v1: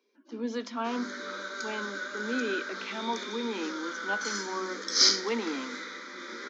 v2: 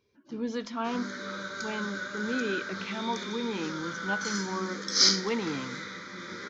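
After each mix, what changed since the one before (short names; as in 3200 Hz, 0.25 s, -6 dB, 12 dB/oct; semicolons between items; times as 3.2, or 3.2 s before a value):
master: remove steep high-pass 220 Hz 72 dB/oct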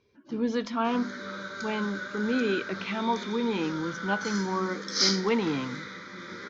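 speech +5.0 dB; master: add air absorption 70 m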